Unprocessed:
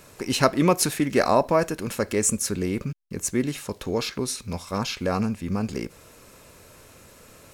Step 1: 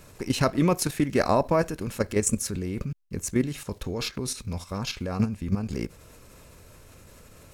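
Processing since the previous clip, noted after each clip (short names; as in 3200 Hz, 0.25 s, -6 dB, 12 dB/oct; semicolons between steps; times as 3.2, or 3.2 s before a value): low shelf 130 Hz +11.5 dB; level quantiser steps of 10 dB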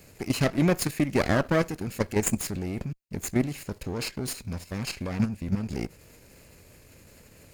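minimum comb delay 0.43 ms; low shelf 79 Hz -6.5 dB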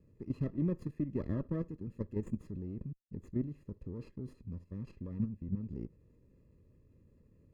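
running mean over 59 samples; gain -8 dB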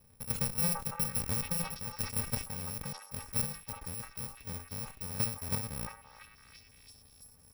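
FFT order left unsorted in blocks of 128 samples; delay with a stepping band-pass 0.337 s, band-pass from 990 Hz, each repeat 0.7 oct, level -3 dB; sustainer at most 140 dB/s; gain +1.5 dB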